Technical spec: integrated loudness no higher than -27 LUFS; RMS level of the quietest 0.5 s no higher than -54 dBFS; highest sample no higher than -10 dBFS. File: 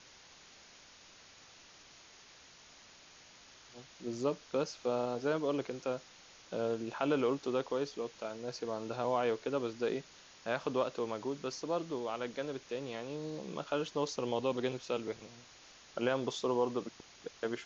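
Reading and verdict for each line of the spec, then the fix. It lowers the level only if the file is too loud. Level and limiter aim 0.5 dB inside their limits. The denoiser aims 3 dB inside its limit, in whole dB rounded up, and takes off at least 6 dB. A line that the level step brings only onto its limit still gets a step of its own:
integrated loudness -36.5 LUFS: OK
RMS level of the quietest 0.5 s -58 dBFS: OK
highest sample -18.5 dBFS: OK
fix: none

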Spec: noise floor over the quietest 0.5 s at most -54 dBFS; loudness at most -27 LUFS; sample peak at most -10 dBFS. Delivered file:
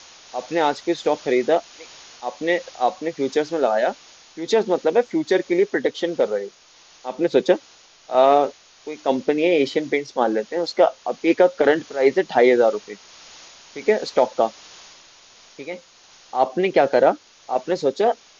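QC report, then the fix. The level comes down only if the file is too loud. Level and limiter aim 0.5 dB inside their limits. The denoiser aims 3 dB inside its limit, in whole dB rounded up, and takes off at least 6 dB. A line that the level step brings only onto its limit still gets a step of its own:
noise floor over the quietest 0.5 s -51 dBFS: fail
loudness -20.5 LUFS: fail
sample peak -4.5 dBFS: fail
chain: gain -7 dB

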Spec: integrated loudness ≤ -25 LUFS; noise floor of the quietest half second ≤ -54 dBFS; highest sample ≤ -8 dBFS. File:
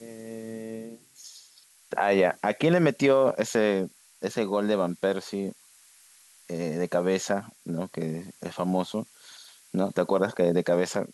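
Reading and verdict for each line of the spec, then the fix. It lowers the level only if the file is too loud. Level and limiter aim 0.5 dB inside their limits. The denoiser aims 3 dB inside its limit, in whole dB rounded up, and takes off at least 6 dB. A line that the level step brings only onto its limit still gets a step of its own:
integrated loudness -27.0 LUFS: OK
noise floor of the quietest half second -57 dBFS: OK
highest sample -10.0 dBFS: OK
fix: none

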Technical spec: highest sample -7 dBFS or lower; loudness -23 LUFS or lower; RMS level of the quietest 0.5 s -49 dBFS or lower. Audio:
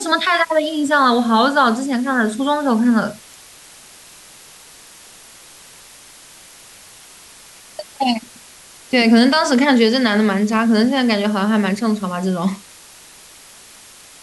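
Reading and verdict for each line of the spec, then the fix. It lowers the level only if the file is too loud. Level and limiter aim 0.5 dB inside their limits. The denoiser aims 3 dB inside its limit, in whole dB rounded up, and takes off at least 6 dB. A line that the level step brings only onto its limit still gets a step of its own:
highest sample -4.0 dBFS: fail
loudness -16.5 LUFS: fail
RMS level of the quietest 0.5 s -43 dBFS: fail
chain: gain -7 dB

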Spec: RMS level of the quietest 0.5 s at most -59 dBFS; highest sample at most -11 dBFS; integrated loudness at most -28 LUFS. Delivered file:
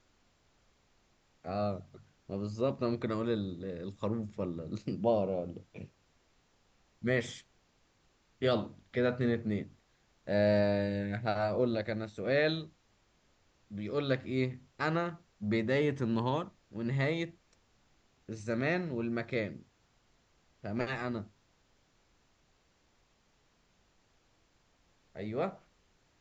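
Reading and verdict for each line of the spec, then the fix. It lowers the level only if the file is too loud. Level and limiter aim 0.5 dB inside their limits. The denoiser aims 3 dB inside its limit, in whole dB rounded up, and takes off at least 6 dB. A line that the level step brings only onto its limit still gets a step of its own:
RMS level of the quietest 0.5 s -71 dBFS: OK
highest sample -16.0 dBFS: OK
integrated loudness -34.0 LUFS: OK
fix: none

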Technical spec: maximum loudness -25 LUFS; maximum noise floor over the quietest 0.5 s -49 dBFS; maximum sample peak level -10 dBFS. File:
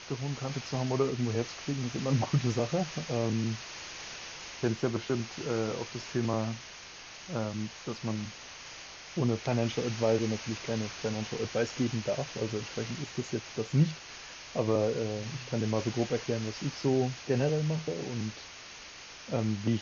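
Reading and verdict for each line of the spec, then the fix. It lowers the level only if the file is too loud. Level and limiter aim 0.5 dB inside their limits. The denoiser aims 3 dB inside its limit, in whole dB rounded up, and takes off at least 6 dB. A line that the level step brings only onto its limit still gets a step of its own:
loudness -32.5 LUFS: OK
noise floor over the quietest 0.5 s -48 dBFS: fail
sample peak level -14.0 dBFS: OK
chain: denoiser 6 dB, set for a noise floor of -48 dBFS

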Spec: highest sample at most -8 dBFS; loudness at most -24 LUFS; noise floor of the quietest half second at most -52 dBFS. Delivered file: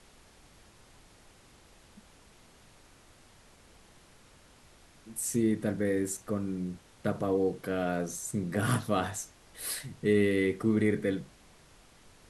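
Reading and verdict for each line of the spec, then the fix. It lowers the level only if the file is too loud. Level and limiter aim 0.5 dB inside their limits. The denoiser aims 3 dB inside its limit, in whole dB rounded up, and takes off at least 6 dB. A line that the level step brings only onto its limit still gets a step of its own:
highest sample -14.5 dBFS: OK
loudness -31.0 LUFS: OK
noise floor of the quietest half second -58 dBFS: OK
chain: none

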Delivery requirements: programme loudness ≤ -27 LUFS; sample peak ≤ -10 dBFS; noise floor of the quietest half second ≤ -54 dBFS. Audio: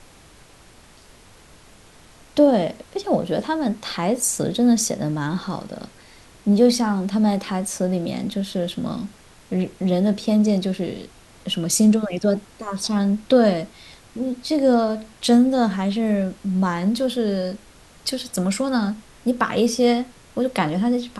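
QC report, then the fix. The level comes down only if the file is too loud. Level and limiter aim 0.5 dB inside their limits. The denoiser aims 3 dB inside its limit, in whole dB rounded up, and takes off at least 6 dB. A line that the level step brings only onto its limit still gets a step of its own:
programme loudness -21.5 LUFS: fail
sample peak -5.0 dBFS: fail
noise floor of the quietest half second -49 dBFS: fail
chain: gain -6 dB

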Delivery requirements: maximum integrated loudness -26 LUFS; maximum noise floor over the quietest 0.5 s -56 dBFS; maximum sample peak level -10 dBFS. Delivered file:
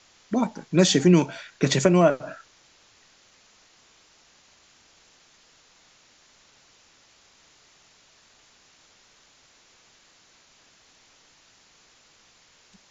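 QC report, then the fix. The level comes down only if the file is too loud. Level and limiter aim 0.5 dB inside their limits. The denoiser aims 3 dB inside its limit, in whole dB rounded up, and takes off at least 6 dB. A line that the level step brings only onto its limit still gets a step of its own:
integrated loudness -21.5 LUFS: fail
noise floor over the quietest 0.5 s -58 dBFS: OK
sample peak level -4.5 dBFS: fail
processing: gain -5 dB; limiter -10.5 dBFS

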